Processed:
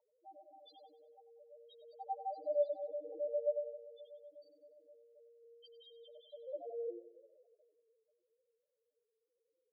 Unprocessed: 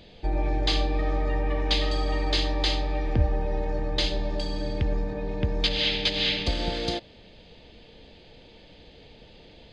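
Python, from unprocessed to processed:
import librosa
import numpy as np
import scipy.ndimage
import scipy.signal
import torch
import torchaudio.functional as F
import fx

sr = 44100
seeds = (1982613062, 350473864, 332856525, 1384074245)

p1 = scipy.signal.sosfilt(scipy.signal.butter(4, 310.0, 'highpass', fs=sr, output='sos'), x)
p2 = fx.notch(p1, sr, hz=910.0, q=6.3)
p3 = fx.spec_topn(p2, sr, count=1)
p4 = fx.wah_lfo(p3, sr, hz=0.25, low_hz=520.0, high_hz=1600.0, q=15.0)
p5 = p4 + fx.echo_feedback(p4, sr, ms=95, feedback_pct=44, wet_db=-13, dry=0)
y = p5 * 10.0 ** (13.0 / 20.0)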